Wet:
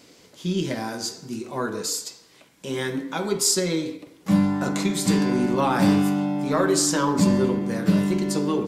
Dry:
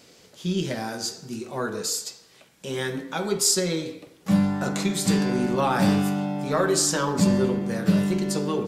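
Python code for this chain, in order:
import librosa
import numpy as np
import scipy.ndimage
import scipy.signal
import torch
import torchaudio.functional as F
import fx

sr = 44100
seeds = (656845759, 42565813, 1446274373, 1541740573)

y = fx.small_body(x, sr, hz=(290.0, 1000.0, 2100.0), ring_ms=45, db=7)
y = fx.end_taper(y, sr, db_per_s=280.0)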